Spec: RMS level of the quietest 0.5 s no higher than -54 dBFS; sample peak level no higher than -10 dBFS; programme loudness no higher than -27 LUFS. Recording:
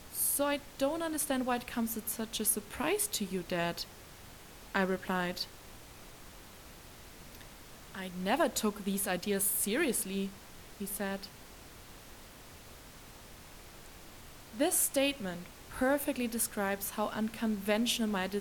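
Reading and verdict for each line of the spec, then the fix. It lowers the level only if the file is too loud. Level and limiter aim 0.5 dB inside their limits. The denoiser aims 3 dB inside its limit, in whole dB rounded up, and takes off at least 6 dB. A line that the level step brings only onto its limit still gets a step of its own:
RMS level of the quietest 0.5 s -52 dBFS: fail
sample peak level -15.5 dBFS: pass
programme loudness -33.0 LUFS: pass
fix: noise reduction 6 dB, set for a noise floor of -52 dBFS

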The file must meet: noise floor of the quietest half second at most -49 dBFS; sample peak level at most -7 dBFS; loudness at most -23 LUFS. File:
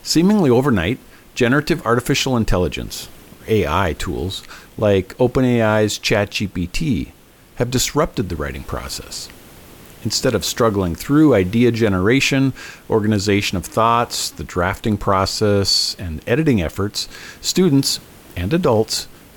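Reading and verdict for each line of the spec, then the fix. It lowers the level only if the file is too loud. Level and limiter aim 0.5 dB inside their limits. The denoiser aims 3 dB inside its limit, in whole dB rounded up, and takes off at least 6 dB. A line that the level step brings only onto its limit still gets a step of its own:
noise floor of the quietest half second -45 dBFS: fail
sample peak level -4.5 dBFS: fail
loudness -18.0 LUFS: fail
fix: trim -5.5 dB

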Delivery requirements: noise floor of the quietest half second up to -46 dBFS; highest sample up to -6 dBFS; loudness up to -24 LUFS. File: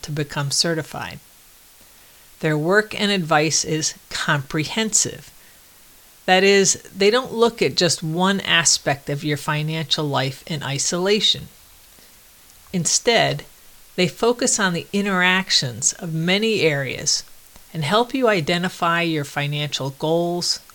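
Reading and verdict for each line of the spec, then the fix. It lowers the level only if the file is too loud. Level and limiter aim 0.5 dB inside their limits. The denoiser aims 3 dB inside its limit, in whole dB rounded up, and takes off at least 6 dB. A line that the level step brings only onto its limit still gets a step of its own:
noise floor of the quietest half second -49 dBFS: pass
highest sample -3.0 dBFS: fail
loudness -19.5 LUFS: fail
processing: trim -5 dB

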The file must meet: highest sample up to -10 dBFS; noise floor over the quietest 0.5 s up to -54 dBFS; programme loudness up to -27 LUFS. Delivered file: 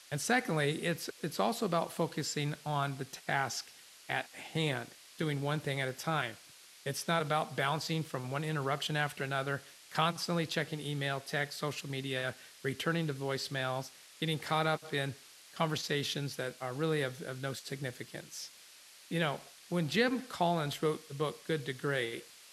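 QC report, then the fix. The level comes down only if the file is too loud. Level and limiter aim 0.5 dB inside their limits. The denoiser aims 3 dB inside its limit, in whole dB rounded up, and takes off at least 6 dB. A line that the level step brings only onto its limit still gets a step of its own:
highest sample -14.5 dBFS: pass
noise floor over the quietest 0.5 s -57 dBFS: pass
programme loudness -35.0 LUFS: pass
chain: none needed

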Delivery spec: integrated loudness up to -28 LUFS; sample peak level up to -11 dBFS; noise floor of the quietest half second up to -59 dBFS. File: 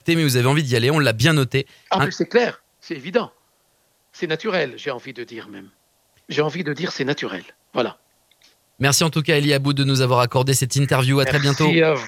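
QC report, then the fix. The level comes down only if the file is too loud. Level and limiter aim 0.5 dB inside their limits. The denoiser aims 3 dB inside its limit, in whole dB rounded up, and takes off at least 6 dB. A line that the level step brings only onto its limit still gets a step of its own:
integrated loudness -19.5 LUFS: fail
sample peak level -1.5 dBFS: fail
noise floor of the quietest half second -63 dBFS: pass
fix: trim -9 dB; peak limiter -11.5 dBFS

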